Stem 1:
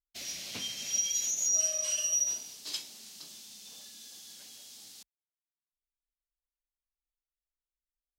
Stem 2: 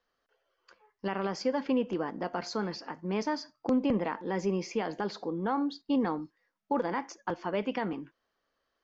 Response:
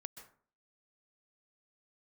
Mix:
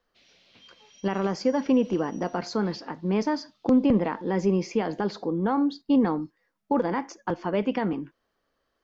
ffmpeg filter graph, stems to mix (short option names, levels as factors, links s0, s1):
-filter_complex "[0:a]lowpass=f=4000:w=0.5412,lowpass=f=4000:w=1.3066,volume=0.188[s0];[1:a]lowshelf=f=460:g=7,volume=1.26[s1];[s0][s1]amix=inputs=2:normalize=0"